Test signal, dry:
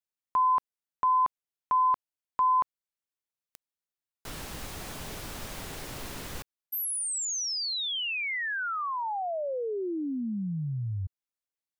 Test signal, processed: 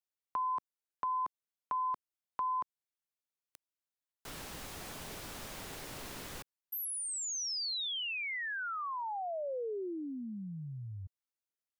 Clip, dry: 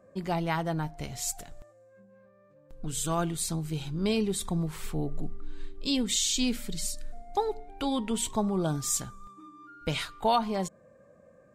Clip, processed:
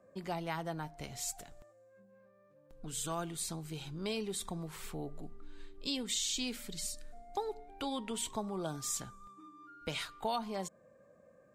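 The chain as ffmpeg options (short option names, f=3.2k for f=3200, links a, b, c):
-filter_complex "[0:a]lowshelf=f=130:g=-6,acrossover=split=420|4600[a][b][c];[a]acompressor=threshold=-38dB:ratio=2.5[d];[b]acompressor=threshold=-33dB:ratio=2[e];[c]acompressor=threshold=-34dB:ratio=2[f];[d][e][f]amix=inputs=3:normalize=0,volume=-4.5dB"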